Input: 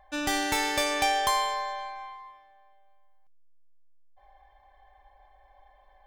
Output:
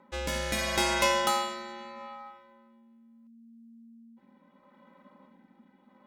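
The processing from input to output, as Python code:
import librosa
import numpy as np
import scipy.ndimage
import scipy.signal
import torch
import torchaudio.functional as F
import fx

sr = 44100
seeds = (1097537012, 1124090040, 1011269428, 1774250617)

y = fx.rotary(x, sr, hz=0.75)
y = y * np.sin(2.0 * np.pi * 230.0 * np.arange(len(y)) / sr)
y = y * 10.0 ** (4.0 / 20.0)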